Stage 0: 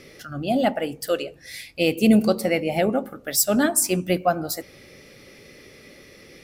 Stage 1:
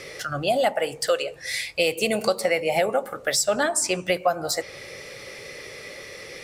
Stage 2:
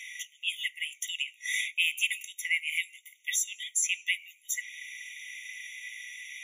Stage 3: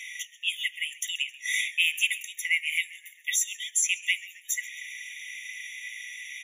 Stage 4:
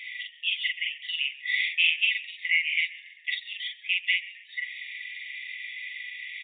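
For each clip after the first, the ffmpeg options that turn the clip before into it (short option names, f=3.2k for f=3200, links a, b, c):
-filter_complex "[0:a]equalizer=f=125:t=o:w=1:g=4,equalizer=f=250:t=o:w=1:g=-7,equalizer=f=500:t=o:w=1:g=9,equalizer=f=1k:t=o:w=1:g=8,equalizer=f=2k:t=o:w=1:g=7,equalizer=f=4k:t=o:w=1:g=5,equalizer=f=8k:t=o:w=1:g=11,acrossover=split=580|7000[a][b][c];[a]acompressor=threshold=-28dB:ratio=4[d];[b]acompressor=threshold=-23dB:ratio=4[e];[c]acompressor=threshold=-37dB:ratio=4[f];[d][e][f]amix=inputs=3:normalize=0"
-af "afftfilt=real='re*eq(mod(floor(b*sr/1024/1900),2),1)':imag='im*eq(mod(floor(b*sr/1024/1900),2),1)':win_size=1024:overlap=0.75"
-filter_complex "[0:a]asplit=5[a][b][c][d][e];[b]adelay=133,afreqshift=-72,volume=-20dB[f];[c]adelay=266,afreqshift=-144,volume=-25.5dB[g];[d]adelay=399,afreqshift=-216,volume=-31dB[h];[e]adelay=532,afreqshift=-288,volume=-36.5dB[i];[a][f][g][h][i]amix=inputs=5:normalize=0,volume=3dB"
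-filter_complex "[0:a]asplit=2[a][b];[b]adelay=43,volume=-2dB[c];[a][c]amix=inputs=2:normalize=0,aresample=8000,aresample=44100"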